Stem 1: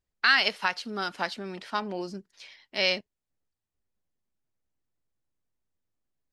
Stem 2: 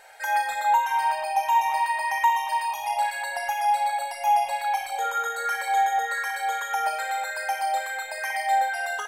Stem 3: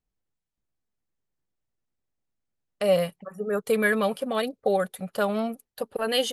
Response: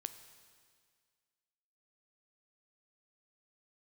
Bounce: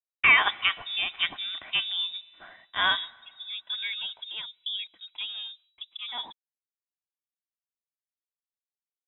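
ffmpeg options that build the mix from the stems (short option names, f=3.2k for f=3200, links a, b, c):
-filter_complex "[0:a]aecho=1:1:2.5:0.43,volume=-1dB,asplit=2[a][b];[b]volume=-4.5dB[c];[2:a]volume=-11.5dB,asplit=2[d][e];[e]volume=-17dB[f];[3:a]atrim=start_sample=2205[g];[c][f]amix=inputs=2:normalize=0[h];[h][g]afir=irnorm=-1:irlink=0[i];[a][d][i]amix=inputs=3:normalize=0,agate=range=-33dB:threshold=-54dB:ratio=3:detection=peak,lowpass=f=3.3k:t=q:w=0.5098,lowpass=f=3.3k:t=q:w=0.6013,lowpass=f=3.3k:t=q:w=0.9,lowpass=f=3.3k:t=q:w=2.563,afreqshift=-3900"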